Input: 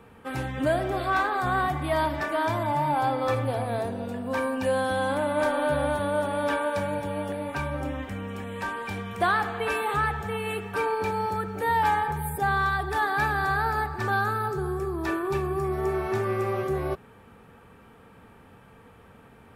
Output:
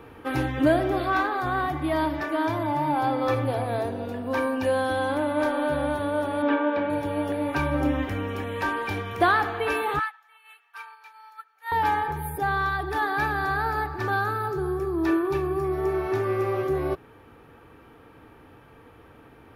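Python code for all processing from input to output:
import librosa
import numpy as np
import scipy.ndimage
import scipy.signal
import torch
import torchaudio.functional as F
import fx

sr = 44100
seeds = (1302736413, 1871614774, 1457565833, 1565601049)

y = fx.chain(x, sr, fx.lowpass(hz=3400.0, slope=24),
    fx.low_shelf_res(hz=180.0, db=-8.0, q=3.0), at=(6.42, 6.9))
y = fx.chain(y, sr, fx.highpass(hz=1000.0, slope=24),
    fx.upward_expand(threshold_db=-38.0, expansion=2.5), at=(9.99, 11.72))
y = fx.graphic_eq_31(y, sr, hz=(200, 315, 8000), db=(-11, 10, -12))
y = fx.rider(y, sr, range_db=10, speed_s=2.0)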